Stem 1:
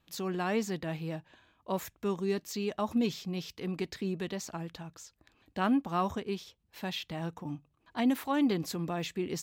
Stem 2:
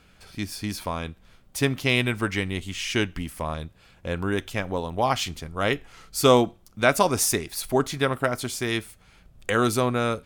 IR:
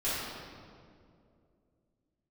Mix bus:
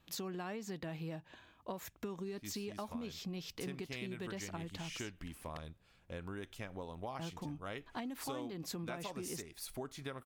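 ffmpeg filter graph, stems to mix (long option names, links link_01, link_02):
-filter_complex "[0:a]acompressor=threshold=-31dB:ratio=6,volume=2.5dB,asplit=3[link_01][link_02][link_03];[link_01]atrim=end=5.57,asetpts=PTS-STARTPTS,afade=type=out:start_time=5.566:duration=0.004:curve=hsin[link_04];[link_02]atrim=start=5.57:end=7.19,asetpts=PTS-STARTPTS,volume=0[link_05];[link_03]atrim=start=7.19,asetpts=PTS-STARTPTS,afade=type=in:duration=0.004:curve=hsin[link_06];[link_04][link_05][link_06]concat=n=3:v=0:a=1[link_07];[1:a]adelay=2050,volume=-13.5dB[link_08];[link_07][link_08]amix=inputs=2:normalize=0,acompressor=threshold=-40dB:ratio=6"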